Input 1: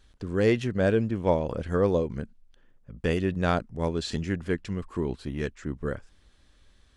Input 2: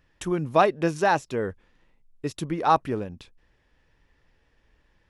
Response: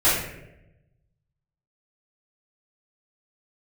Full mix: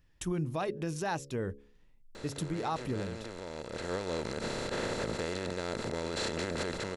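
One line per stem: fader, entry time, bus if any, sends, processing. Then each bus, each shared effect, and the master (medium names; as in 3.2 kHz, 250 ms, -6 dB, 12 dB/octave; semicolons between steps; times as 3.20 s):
3.56 s -23.5 dB -> 4.34 s -11 dB, 2.15 s, no send, spectral levelling over time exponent 0.2; peak limiter -11.5 dBFS, peak gain reduction 8.5 dB; level rider gain up to 3 dB
-11.0 dB, 0.00 s, no send, bass shelf 270 Hz +12 dB; de-hum 69.89 Hz, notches 8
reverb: none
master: treble shelf 3.3 kHz +11 dB; peak limiter -24 dBFS, peak gain reduction 9.5 dB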